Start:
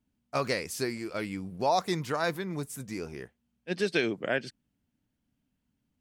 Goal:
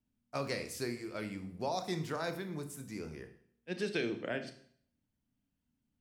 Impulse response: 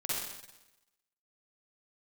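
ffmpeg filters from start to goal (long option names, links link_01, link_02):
-filter_complex "[0:a]acrossover=split=490|3000[link_01][link_02][link_03];[link_02]acompressor=threshold=-29dB:ratio=6[link_04];[link_01][link_04][link_03]amix=inputs=3:normalize=0,asplit=2[link_05][link_06];[1:a]atrim=start_sample=2205,asetrate=74970,aresample=44100,lowshelf=frequency=290:gain=9[link_07];[link_06][link_07]afir=irnorm=-1:irlink=0,volume=-7dB[link_08];[link_05][link_08]amix=inputs=2:normalize=0,volume=-8.5dB"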